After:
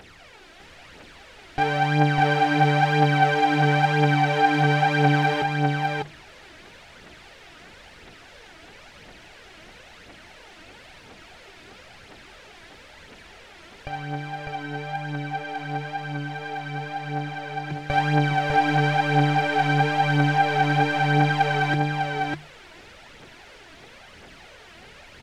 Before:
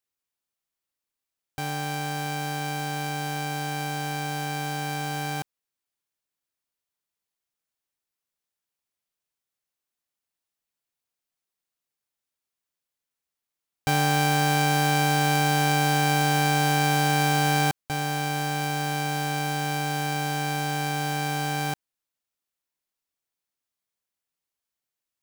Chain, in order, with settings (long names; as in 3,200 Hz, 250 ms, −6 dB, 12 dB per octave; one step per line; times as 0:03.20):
converter with a step at zero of −41 dBFS
low-pass filter 2,400 Hz 12 dB per octave
parametric band 1,100 Hz −7 dB 0.47 octaves
mains-hum notches 50/100/150 Hz
compressor whose output falls as the input rises −30 dBFS, ratio −0.5
phase shifter 0.99 Hz, delay 3.2 ms, feedback 64%
tape wow and flutter 22 cents
on a send: single-tap delay 601 ms −3 dB
on the sum: level +4.5 dB